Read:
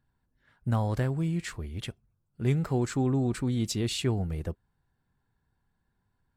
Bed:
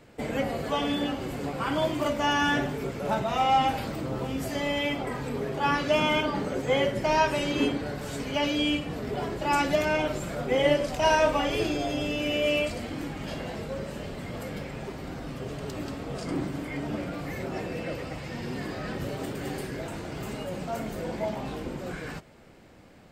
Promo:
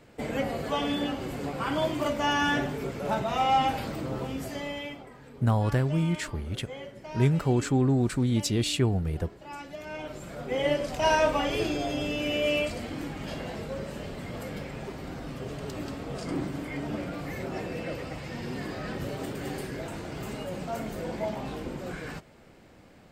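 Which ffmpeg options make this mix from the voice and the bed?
ffmpeg -i stem1.wav -i stem2.wav -filter_complex "[0:a]adelay=4750,volume=3dB[link_01];[1:a]volume=14.5dB,afade=type=out:start_time=4.13:duration=0.97:silence=0.16788,afade=type=in:start_time=9.77:duration=1.35:silence=0.16788[link_02];[link_01][link_02]amix=inputs=2:normalize=0" out.wav

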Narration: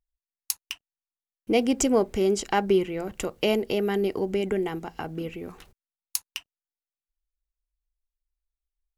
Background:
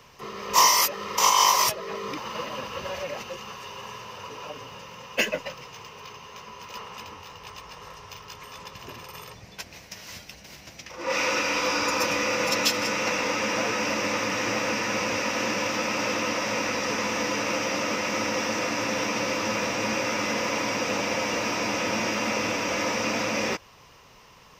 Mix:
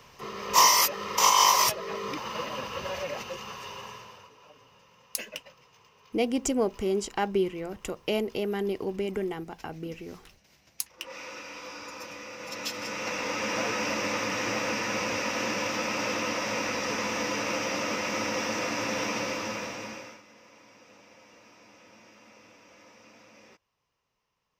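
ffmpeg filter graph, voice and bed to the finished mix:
ffmpeg -i stem1.wav -i stem2.wav -filter_complex "[0:a]adelay=4650,volume=-4.5dB[link_01];[1:a]volume=12.5dB,afade=type=out:start_time=3.71:duration=0.6:silence=0.16788,afade=type=in:start_time=12.38:duration=1.23:silence=0.211349,afade=type=out:start_time=19.11:duration=1.11:silence=0.0562341[link_02];[link_01][link_02]amix=inputs=2:normalize=0" out.wav

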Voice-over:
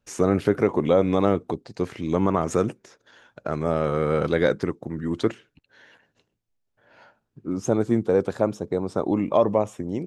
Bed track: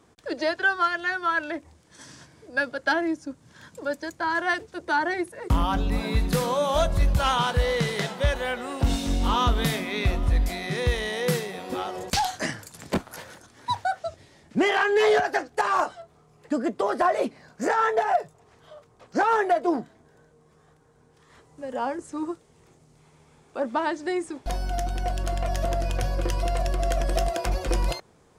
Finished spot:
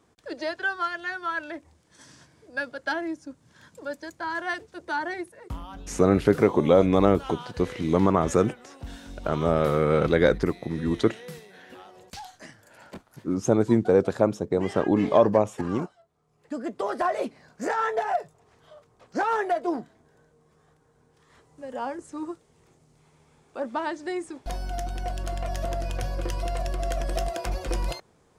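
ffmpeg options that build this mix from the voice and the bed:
ffmpeg -i stem1.wav -i stem2.wav -filter_complex "[0:a]adelay=5800,volume=1dB[link_01];[1:a]volume=8dB,afade=type=out:start_time=5.14:duration=0.47:silence=0.266073,afade=type=in:start_time=16.14:duration=0.72:silence=0.223872[link_02];[link_01][link_02]amix=inputs=2:normalize=0" out.wav

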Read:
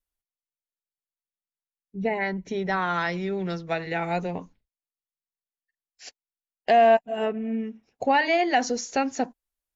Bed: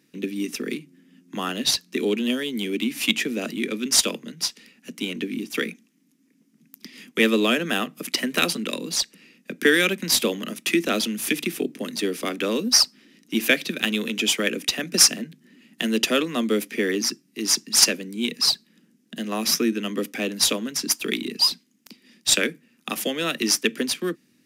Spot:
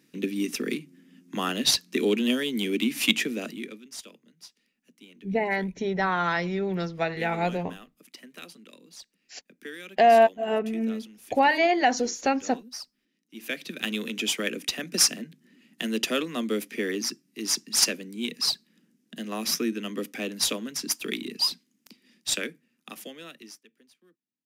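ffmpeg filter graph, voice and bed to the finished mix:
ffmpeg -i stem1.wav -i stem2.wav -filter_complex "[0:a]adelay=3300,volume=0.5dB[link_01];[1:a]volume=16.5dB,afade=type=out:start_time=3.08:duration=0.76:silence=0.0794328,afade=type=in:start_time=13.33:duration=0.6:silence=0.141254,afade=type=out:start_time=21.77:duration=1.87:silence=0.0316228[link_02];[link_01][link_02]amix=inputs=2:normalize=0" out.wav

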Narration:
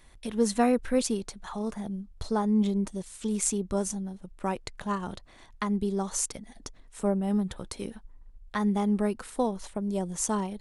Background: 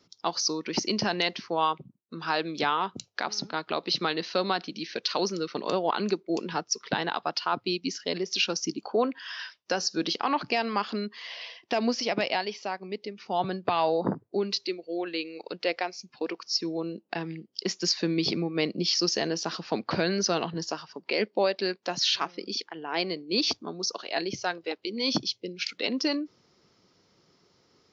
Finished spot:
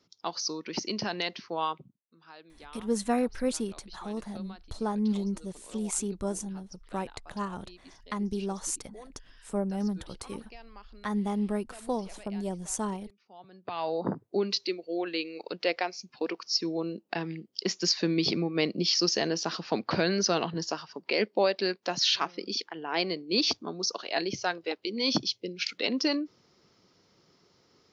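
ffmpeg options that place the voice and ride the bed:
ffmpeg -i stem1.wav -i stem2.wav -filter_complex "[0:a]adelay=2500,volume=-3.5dB[link_01];[1:a]volume=18dB,afade=type=out:start_time=1.84:duration=0.23:silence=0.125893,afade=type=in:start_time=13.51:duration=0.82:silence=0.0707946[link_02];[link_01][link_02]amix=inputs=2:normalize=0" out.wav

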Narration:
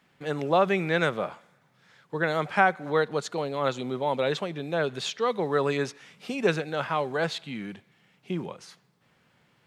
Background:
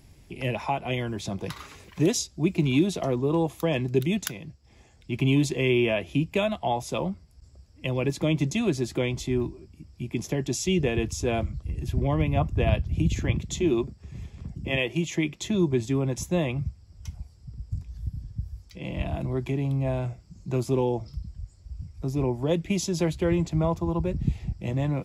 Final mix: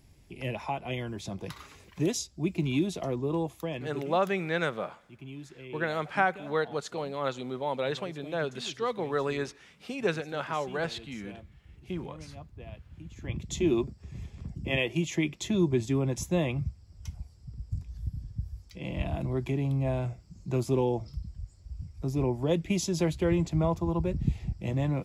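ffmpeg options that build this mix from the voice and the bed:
ffmpeg -i stem1.wav -i stem2.wav -filter_complex "[0:a]adelay=3600,volume=-4.5dB[link_01];[1:a]volume=14dB,afade=type=out:start_time=3.36:duration=0.79:silence=0.158489,afade=type=in:start_time=13.14:duration=0.47:silence=0.105925[link_02];[link_01][link_02]amix=inputs=2:normalize=0" out.wav

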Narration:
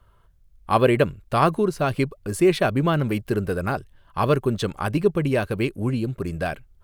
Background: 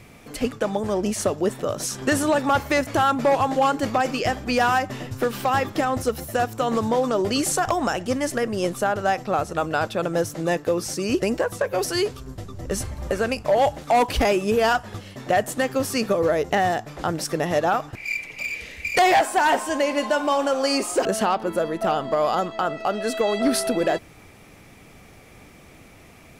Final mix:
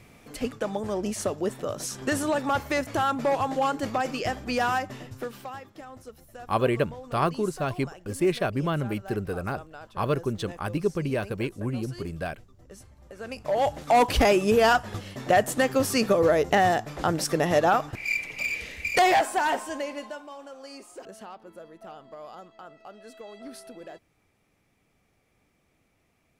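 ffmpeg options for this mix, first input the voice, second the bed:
ffmpeg -i stem1.wav -i stem2.wav -filter_complex "[0:a]adelay=5800,volume=-6dB[link_01];[1:a]volume=15.5dB,afade=type=out:start_time=4.73:duration=0.88:silence=0.16788,afade=type=in:start_time=13.14:duration=0.94:silence=0.0891251,afade=type=out:start_time=18.51:duration=1.75:silence=0.0841395[link_02];[link_01][link_02]amix=inputs=2:normalize=0" out.wav

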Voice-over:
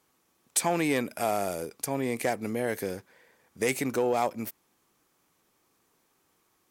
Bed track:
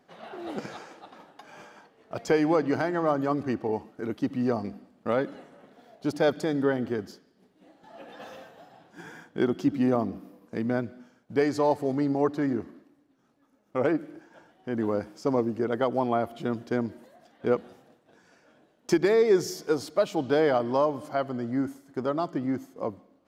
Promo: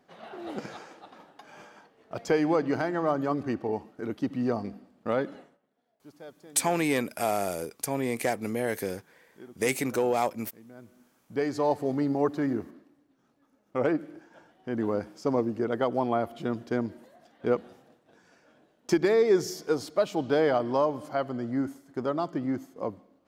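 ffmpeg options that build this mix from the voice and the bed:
ffmpeg -i stem1.wav -i stem2.wav -filter_complex "[0:a]adelay=6000,volume=0.5dB[link_01];[1:a]volume=20dB,afade=type=out:start_time=5.35:duration=0.24:silence=0.0891251,afade=type=in:start_time=10.75:duration=1.04:silence=0.0841395[link_02];[link_01][link_02]amix=inputs=2:normalize=0" out.wav

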